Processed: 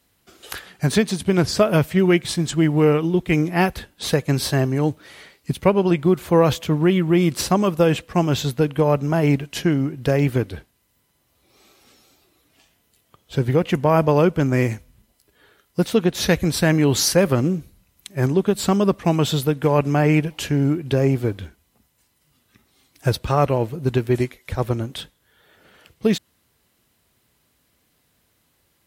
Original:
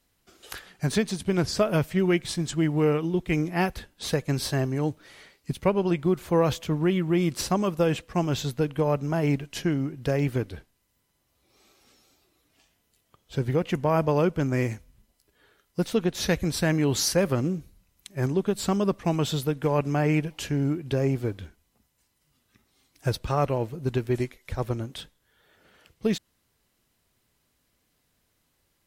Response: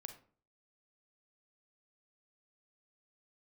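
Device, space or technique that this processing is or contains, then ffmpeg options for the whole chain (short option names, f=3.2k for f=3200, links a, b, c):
exciter from parts: -filter_complex "[0:a]highpass=49,asplit=2[a][b];[b]highpass=f=3.6k:w=0.5412,highpass=f=3.6k:w=1.3066,asoftclip=type=tanh:threshold=-26dB,highpass=4.8k,volume=-13dB[c];[a][c]amix=inputs=2:normalize=0,volume=6.5dB"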